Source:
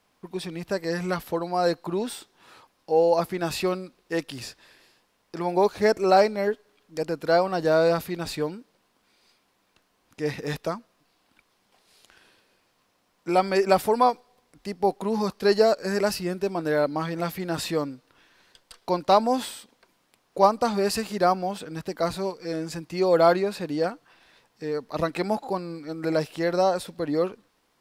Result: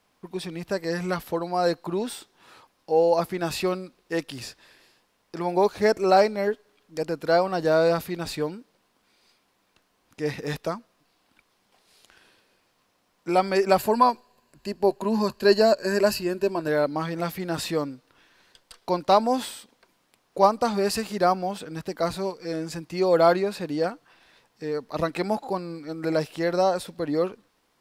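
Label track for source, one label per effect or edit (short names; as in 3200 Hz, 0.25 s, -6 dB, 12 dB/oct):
13.780000	16.680000	ripple EQ crests per octave 1.4, crest to trough 9 dB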